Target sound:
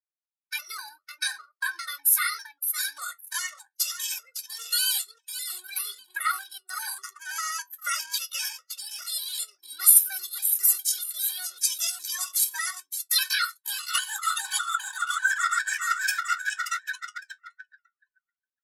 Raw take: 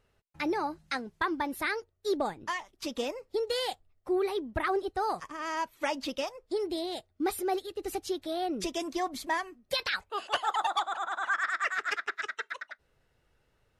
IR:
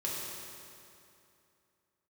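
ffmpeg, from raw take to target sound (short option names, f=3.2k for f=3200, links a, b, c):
-filter_complex "[0:a]aemphasis=mode=production:type=75fm,aecho=1:1:417|834|1251|1668:0.355|0.114|0.0363|0.0116,asplit=2[a][b];[1:a]atrim=start_sample=2205,afade=t=out:st=0.13:d=0.01,atrim=end_sample=6174[c];[b][c]afir=irnorm=-1:irlink=0,volume=-11.5dB[d];[a][d]amix=inputs=2:normalize=0,atempo=0.74,highshelf=f=3.5k:g=6,anlmdn=1.58,flanger=delay=9.7:depth=1.8:regen=-52:speed=1.7:shape=sinusoidal,highpass=f=1.4k:t=q:w=8.5,crystalizer=i=8:c=0,afftfilt=real='re*gt(sin(2*PI*2.5*pts/sr)*(1-2*mod(floor(b*sr/1024/370),2)),0)':imag='im*gt(sin(2*PI*2.5*pts/sr)*(1-2*mod(floor(b*sr/1024/370),2)),0)':win_size=1024:overlap=0.75,volume=-10.5dB"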